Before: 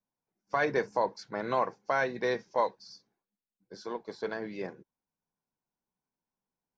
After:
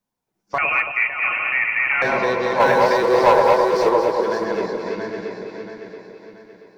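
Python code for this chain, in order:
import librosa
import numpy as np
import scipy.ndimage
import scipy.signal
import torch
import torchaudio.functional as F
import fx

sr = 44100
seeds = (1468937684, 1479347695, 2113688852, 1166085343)

p1 = fx.reverse_delay_fb(x, sr, ms=340, feedback_pct=61, wet_db=-2.0)
p2 = fx.spec_box(p1, sr, start_s=3.03, length_s=1.18, low_hz=320.0, high_hz=1400.0, gain_db=9)
p3 = fx.leveller(p2, sr, passes=2, at=(2.6, 3.89))
p4 = np.clip(10.0 ** (31.5 / 20.0) * p3, -1.0, 1.0) / 10.0 ** (31.5 / 20.0)
p5 = p3 + (p4 * librosa.db_to_amplitude(-7.5))
p6 = p5 + 10.0 ** (-9.0 / 20.0) * np.pad(p5, (int(555 * sr / 1000.0), 0))[:len(p5)]
p7 = fx.freq_invert(p6, sr, carrier_hz=2900, at=(0.58, 2.02))
p8 = p7 + fx.echo_alternate(p7, sr, ms=111, hz=1100.0, feedback_pct=69, wet_db=-5.0, dry=0)
y = p8 * librosa.db_to_amplitude(5.0)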